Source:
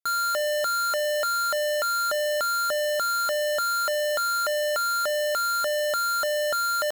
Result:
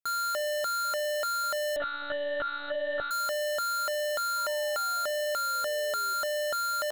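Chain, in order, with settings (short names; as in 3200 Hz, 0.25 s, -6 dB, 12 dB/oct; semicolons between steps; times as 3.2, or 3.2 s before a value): 4.36–6.14 painted sound fall 380–1000 Hz -48 dBFS; analogue delay 0.496 s, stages 2048, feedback 47%, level -20 dB; 1.76–3.11 monotone LPC vocoder at 8 kHz 290 Hz; gain -5 dB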